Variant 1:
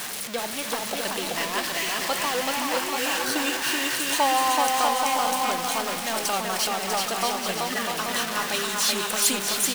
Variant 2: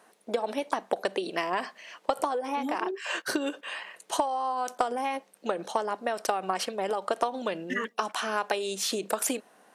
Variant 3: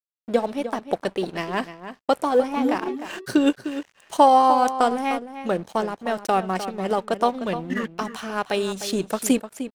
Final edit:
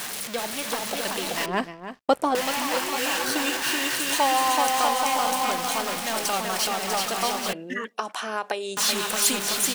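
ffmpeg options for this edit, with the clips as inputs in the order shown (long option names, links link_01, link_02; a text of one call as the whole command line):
ffmpeg -i take0.wav -i take1.wav -i take2.wav -filter_complex "[0:a]asplit=3[link_01][link_02][link_03];[link_01]atrim=end=1.462[link_04];[2:a]atrim=start=1.458:end=2.352[link_05];[link_02]atrim=start=2.348:end=7.532[link_06];[1:a]atrim=start=7.528:end=8.772[link_07];[link_03]atrim=start=8.768[link_08];[link_04][link_05]acrossfade=duration=0.004:curve1=hsin:curve2=hsin[link_09];[link_09][link_06]acrossfade=duration=0.004:curve1=hsin:curve2=hsin[link_10];[link_10][link_07]acrossfade=duration=0.004:curve1=hsin:curve2=hsin[link_11];[link_11][link_08]acrossfade=duration=0.004:curve1=hsin:curve2=hsin" out.wav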